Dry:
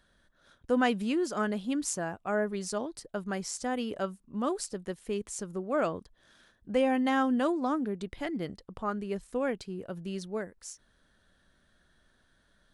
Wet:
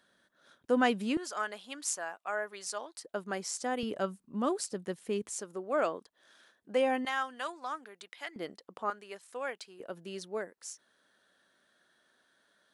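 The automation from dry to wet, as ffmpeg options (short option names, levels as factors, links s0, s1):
-af "asetnsamples=n=441:p=0,asendcmd='1.17 highpass f 800;3.04 highpass f 290;3.83 highpass f 140;5.33 highpass f 370;7.05 highpass f 1100;8.36 highpass f 370;8.9 highpass f 780;9.8 highpass f 340',highpass=210"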